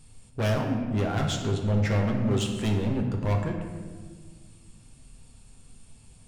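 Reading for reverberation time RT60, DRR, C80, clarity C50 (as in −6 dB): 1.6 s, 1.0 dB, 6.5 dB, 5.0 dB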